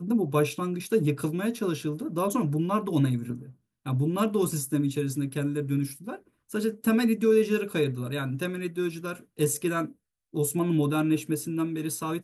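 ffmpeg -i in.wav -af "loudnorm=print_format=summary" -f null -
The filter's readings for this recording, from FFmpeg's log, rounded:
Input Integrated:    -27.7 LUFS
Input True Peak:     -12.0 dBTP
Input LRA:             1.2 LU
Input Threshold:     -38.0 LUFS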